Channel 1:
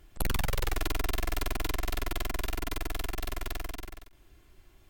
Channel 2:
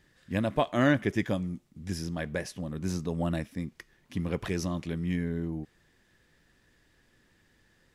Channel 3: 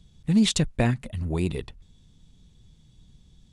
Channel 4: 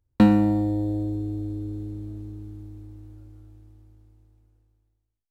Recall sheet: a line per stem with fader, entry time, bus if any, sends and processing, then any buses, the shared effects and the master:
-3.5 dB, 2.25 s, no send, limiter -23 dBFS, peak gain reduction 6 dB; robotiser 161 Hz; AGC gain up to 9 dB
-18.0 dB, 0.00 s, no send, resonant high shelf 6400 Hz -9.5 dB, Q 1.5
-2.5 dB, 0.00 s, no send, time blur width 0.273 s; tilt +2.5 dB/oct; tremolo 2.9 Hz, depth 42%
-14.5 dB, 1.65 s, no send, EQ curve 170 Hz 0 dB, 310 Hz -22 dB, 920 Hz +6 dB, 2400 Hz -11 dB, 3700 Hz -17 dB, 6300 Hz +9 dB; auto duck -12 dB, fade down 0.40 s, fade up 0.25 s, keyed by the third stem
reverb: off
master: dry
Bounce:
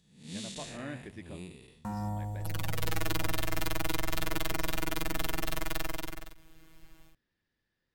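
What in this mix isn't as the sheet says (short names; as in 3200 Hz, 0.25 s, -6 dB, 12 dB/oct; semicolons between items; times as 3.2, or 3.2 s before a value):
stem 3 -2.5 dB -> -9.5 dB; stem 4 -14.5 dB -> -7.5 dB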